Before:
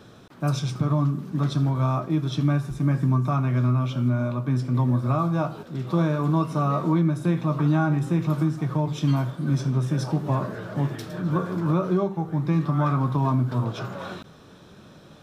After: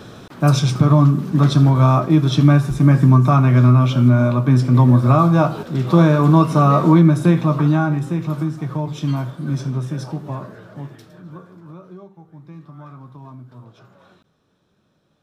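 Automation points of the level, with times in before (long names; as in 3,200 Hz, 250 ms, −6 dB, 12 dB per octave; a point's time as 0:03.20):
0:07.18 +10 dB
0:08.17 +1 dB
0:09.70 +1 dB
0:11.02 −9 dB
0:11.61 −16.5 dB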